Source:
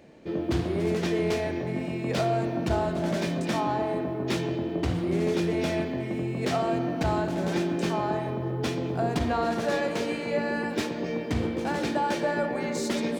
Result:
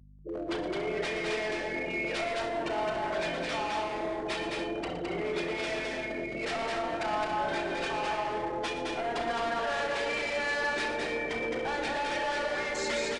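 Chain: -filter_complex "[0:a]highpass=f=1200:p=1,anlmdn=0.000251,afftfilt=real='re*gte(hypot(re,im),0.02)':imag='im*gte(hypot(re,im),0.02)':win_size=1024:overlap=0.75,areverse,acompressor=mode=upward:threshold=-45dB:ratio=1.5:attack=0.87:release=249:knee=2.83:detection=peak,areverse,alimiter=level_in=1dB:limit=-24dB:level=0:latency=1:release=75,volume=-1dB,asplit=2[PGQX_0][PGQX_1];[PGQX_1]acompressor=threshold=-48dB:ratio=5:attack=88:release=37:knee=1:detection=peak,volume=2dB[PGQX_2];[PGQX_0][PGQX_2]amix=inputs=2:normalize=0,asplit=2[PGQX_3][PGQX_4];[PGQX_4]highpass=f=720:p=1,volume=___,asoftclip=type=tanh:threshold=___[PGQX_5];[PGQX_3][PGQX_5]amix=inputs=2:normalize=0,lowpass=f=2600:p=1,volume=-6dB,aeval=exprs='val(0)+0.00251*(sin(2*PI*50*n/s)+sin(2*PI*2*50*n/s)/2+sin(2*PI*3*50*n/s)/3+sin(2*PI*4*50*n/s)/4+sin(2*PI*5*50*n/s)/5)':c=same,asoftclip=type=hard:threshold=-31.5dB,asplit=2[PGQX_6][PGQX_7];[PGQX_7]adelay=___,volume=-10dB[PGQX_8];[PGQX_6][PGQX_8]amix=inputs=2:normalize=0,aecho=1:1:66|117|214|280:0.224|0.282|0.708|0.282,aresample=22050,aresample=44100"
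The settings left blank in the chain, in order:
9dB, -19dB, 33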